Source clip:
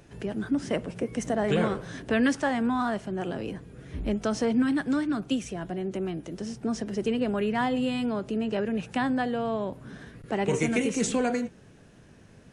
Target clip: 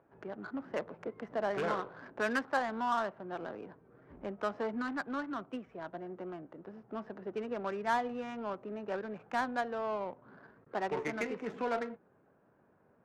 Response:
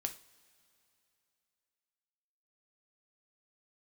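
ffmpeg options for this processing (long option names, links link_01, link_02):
-af "asetrate=42336,aresample=44100,bandpass=frequency=1100:width_type=q:width=1.2:csg=0,adynamicsmooth=sensitivity=6.5:basefreq=960"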